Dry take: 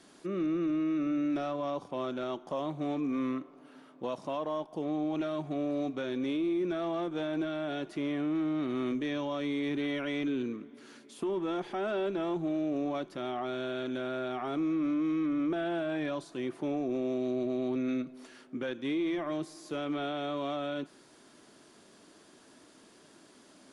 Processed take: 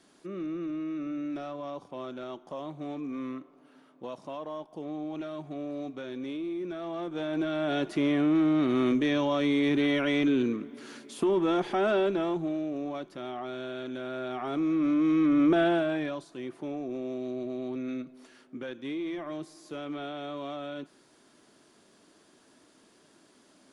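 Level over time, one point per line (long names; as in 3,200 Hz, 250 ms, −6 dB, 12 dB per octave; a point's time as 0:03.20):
0:06.80 −4 dB
0:07.78 +7 dB
0:11.92 +7 dB
0:12.73 −2 dB
0:13.97 −2 dB
0:15.62 +9.5 dB
0:16.26 −3 dB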